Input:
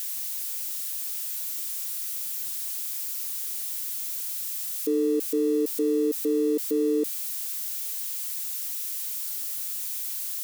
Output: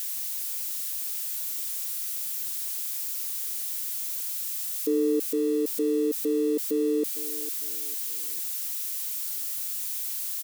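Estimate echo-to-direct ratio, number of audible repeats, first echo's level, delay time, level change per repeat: -14.5 dB, 3, -15.0 dB, 454 ms, -8.5 dB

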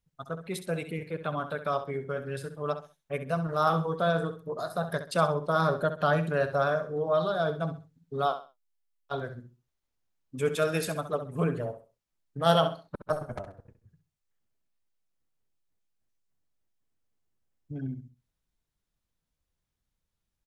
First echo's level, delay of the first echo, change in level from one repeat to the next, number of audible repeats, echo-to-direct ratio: -11.0 dB, 66 ms, -11.5 dB, 3, -10.5 dB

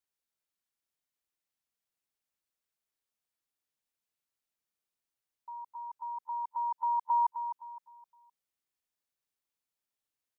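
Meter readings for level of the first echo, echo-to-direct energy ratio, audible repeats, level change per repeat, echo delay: -9.5 dB, -9.0 dB, 3, -9.5 dB, 258 ms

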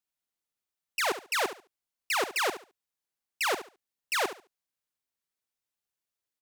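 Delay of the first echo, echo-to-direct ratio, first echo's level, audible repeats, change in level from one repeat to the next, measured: 71 ms, -12.0 dB, -12.0 dB, 2, -13.0 dB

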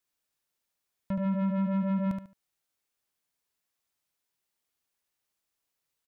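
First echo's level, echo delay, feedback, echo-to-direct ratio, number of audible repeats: -6.0 dB, 73 ms, 25%, -5.5 dB, 3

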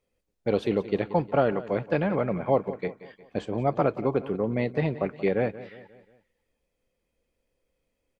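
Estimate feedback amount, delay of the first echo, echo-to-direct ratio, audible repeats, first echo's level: 47%, 179 ms, -15.0 dB, 3, -16.0 dB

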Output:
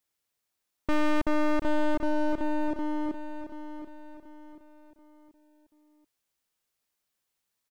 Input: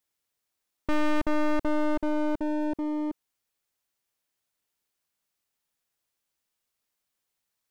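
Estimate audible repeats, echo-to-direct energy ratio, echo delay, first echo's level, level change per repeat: 4, -9.5 dB, 733 ms, -10.0 dB, -8.0 dB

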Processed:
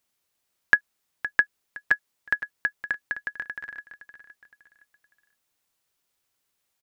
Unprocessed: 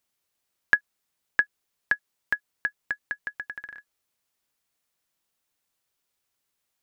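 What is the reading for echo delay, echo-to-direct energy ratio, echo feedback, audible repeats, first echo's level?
515 ms, -12.5 dB, 35%, 3, -13.0 dB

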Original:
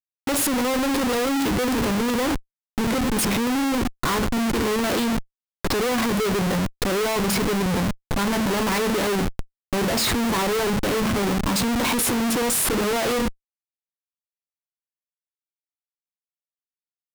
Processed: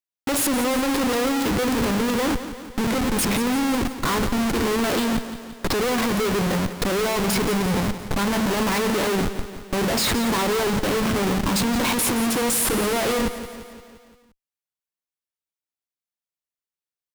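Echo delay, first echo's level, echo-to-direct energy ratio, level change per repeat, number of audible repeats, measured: 173 ms, -12.0 dB, -10.0 dB, -4.5 dB, 5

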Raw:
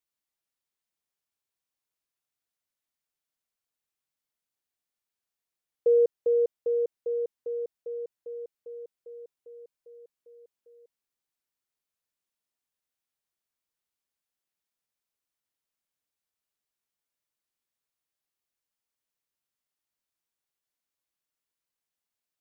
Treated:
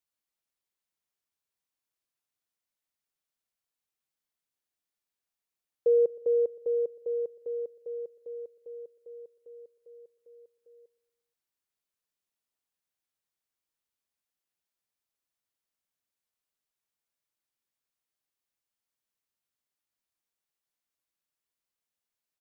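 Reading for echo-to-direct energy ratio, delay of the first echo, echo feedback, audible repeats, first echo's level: -20.0 dB, 119 ms, 59%, 3, -22.0 dB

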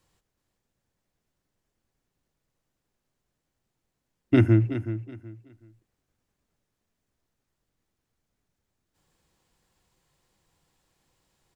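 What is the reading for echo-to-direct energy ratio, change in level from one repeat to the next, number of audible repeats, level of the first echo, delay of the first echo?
-11.5 dB, -12.0 dB, 2, -12.0 dB, 374 ms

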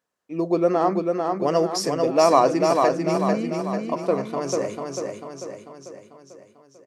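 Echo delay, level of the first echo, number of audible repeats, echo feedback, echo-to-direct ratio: 444 ms, -4.0 dB, 6, 53%, -2.5 dB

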